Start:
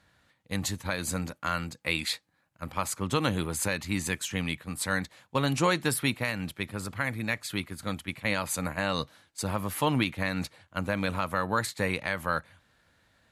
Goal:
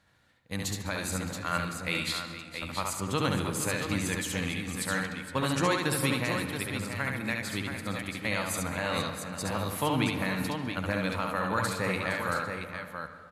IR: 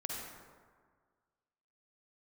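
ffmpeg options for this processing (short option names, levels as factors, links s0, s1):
-filter_complex "[0:a]aecho=1:1:69|204|463|676:0.668|0.106|0.224|0.447,asplit=2[s0][s1];[1:a]atrim=start_sample=2205,lowpass=5500,adelay=77[s2];[s1][s2]afir=irnorm=-1:irlink=0,volume=0.335[s3];[s0][s3]amix=inputs=2:normalize=0,volume=0.708"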